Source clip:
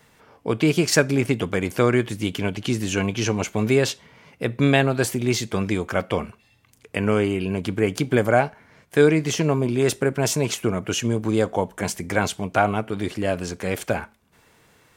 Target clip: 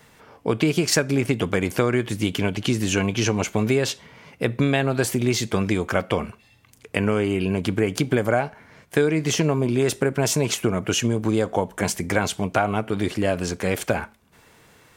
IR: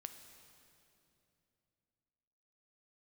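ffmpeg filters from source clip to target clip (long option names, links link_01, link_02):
-af "acompressor=threshold=-20dB:ratio=5,volume=3.5dB"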